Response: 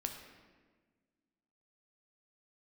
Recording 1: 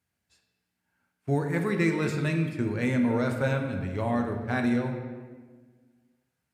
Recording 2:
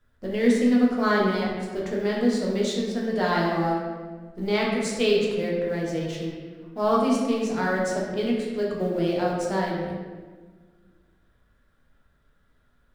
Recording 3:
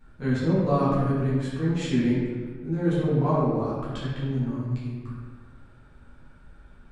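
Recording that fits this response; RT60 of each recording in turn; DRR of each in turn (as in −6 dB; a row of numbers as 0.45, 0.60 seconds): 1; 1.5, 1.5, 1.5 seconds; 3.5, −4.0, −10.5 decibels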